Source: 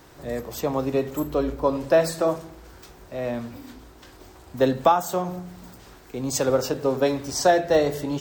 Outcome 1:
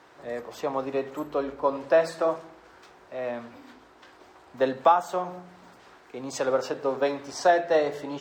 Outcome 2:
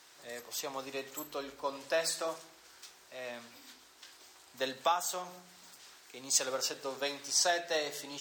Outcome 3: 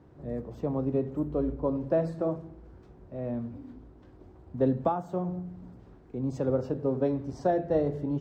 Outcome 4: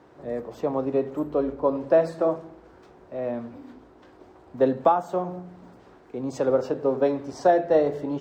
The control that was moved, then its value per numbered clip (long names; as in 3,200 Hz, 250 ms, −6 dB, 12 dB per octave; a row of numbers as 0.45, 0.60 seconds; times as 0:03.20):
resonant band-pass, frequency: 1,200, 5,600, 130, 450 Hertz